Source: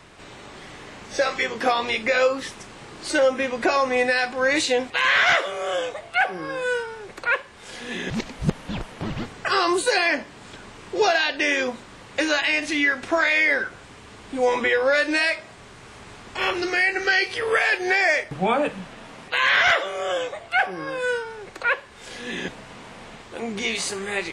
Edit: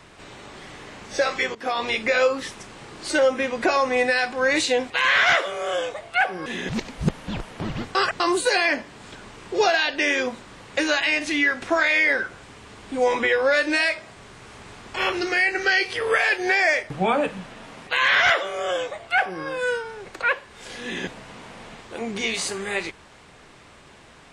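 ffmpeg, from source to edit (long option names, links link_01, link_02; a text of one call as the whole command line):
ffmpeg -i in.wav -filter_complex "[0:a]asplit=5[link_01][link_02][link_03][link_04][link_05];[link_01]atrim=end=1.55,asetpts=PTS-STARTPTS,afade=type=out:start_time=1.546:duration=0.004:curve=hsin:silence=0.11885[link_06];[link_02]atrim=start=1.55:end=6.462,asetpts=PTS-STARTPTS,afade=type=in:duration=0.3:silence=0.11885[link_07];[link_03]atrim=start=7.868:end=9.362[link_08];[link_04]atrim=start=9.358:end=9.612,asetpts=PTS-STARTPTS,areverse[link_09];[link_05]atrim=start=9.608[link_10];[link_06][link_07]concat=n=2:v=0:a=1[link_11];[link_11][link_08]acrossfade=duration=0.004:curve1=hsin:curve2=hsin[link_12];[link_12][link_09]acrossfade=duration=0.004:curve1=hsin:curve2=hsin[link_13];[link_13][link_10]acrossfade=duration=0.004:curve1=hsin:curve2=hsin" out.wav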